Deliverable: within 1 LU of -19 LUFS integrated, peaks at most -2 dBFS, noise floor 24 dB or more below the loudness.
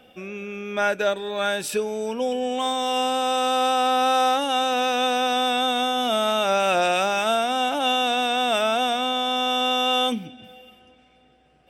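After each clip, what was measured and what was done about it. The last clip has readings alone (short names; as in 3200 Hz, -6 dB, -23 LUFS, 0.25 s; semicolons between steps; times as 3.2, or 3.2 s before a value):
loudness -22.0 LUFS; peak -11.0 dBFS; loudness target -19.0 LUFS
-> gain +3 dB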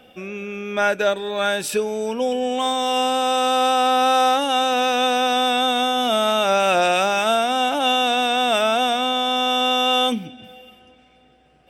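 loudness -19.0 LUFS; peak -8.0 dBFS; noise floor -54 dBFS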